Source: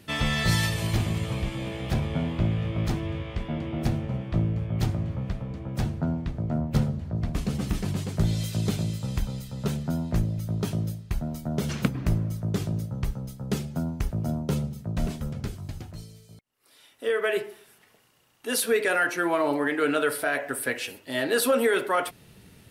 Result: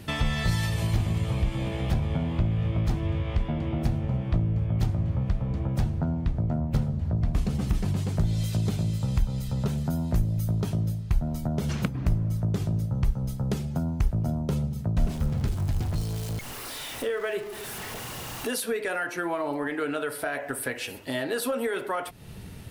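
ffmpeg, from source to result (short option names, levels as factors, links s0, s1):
-filter_complex "[0:a]asettb=1/sr,asplit=3[s0][s1][s2];[s0]atrim=end=9.774[s3];[s1]atrim=start=9.77:end=10.61,asetpts=PTS-STARTPTS,afade=t=in:d=0.004:c=qsin,afade=t=out:st=0.836:d=0.004:c=qsin,highshelf=f=7800:g=11[s4];[s2]atrim=start=10.606[s5];[s3][s4]acrossfade=d=0.004:c1=hsin:c2=qsin[s6];[s6][s5]acrossfade=d=0.004:c1=qsin:c2=hsin,asettb=1/sr,asplit=3[s7][s8][s9];[s7]atrim=end=14.994[s10];[s8]atrim=start=14.99:end=18.51,asetpts=PTS-STARTPTS,afade=t=in:d=0.004:c=qsin,afade=t=out:st=3.516:d=0.004:c=qsin,aeval=exprs='val(0)+0.5*0.0126*sgn(val(0))':c=same[s11];[s9]atrim=start=18.506[s12];[s10][s11]acrossfade=d=0.004:c1=hsin:c2=qsin[s13];[s13][s12]acrossfade=d=0.004:c1=qsin:c2=hsin,equalizer=f=830:w=1.5:g=3.5,acompressor=threshold=0.0158:ratio=3,lowshelf=f=120:g=11.5,volume=1.78"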